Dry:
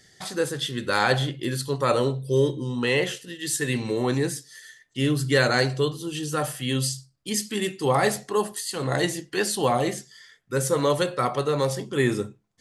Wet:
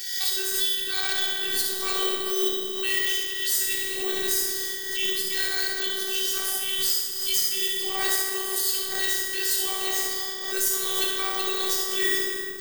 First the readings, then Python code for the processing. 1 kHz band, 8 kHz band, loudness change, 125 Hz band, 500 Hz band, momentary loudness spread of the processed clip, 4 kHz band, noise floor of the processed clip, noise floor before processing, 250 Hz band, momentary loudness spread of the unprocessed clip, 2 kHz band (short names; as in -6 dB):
-8.5 dB, +5.5 dB, +1.5 dB, under -25 dB, -9.5 dB, 3 LU, +6.0 dB, -31 dBFS, -60 dBFS, -12.5 dB, 8 LU, -0.5 dB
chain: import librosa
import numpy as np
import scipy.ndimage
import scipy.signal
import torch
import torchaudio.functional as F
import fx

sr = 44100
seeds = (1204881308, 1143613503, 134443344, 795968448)

p1 = fx.law_mismatch(x, sr, coded='mu')
p2 = fx.weighting(p1, sr, curve='D')
p3 = 10.0 ** (-12.5 / 20.0) * np.tanh(p2 / 10.0 ** (-12.5 / 20.0))
p4 = fx.high_shelf(p3, sr, hz=3600.0, db=12.0)
p5 = fx.rev_plate(p4, sr, seeds[0], rt60_s=2.3, hf_ratio=0.55, predelay_ms=0, drr_db=-2.5)
p6 = fx.robotise(p5, sr, hz=384.0)
p7 = fx.rider(p6, sr, range_db=4, speed_s=0.5)
p8 = p7 + fx.room_early_taps(p7, sr, ms=(59, 71), db=(-12.0, -5.5), dry=0)
p9 = (np.kron(p8[::2], np.eye(2)[0]) * 2)[:len(p8)]
p10 = fx.pre_swell(p9, sr, db_per_s=44.0)
y = p10 * 10.0 ** (-13.0 / 20.0)